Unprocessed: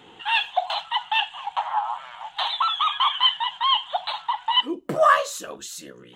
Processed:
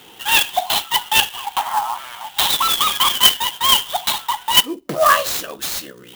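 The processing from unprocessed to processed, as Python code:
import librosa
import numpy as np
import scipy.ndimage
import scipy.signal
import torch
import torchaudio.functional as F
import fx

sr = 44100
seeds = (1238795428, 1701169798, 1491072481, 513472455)

p1 = fx.peak_eq(x, sr, hz=5100.0, db=11.5, octaves=1.8)
p2 = fx.rider(p1, sr, range_db=3, speed_s=0.5)
p3 = p1 + F.gain(torch.from_numpy(p2), 1.0).numpy()
p4 = fx.clock_jitter(p3, sr, seeds[0], jitter_ms=0.033)
y = F.gain(torch.from_numpy(p4), -4.5).numpy()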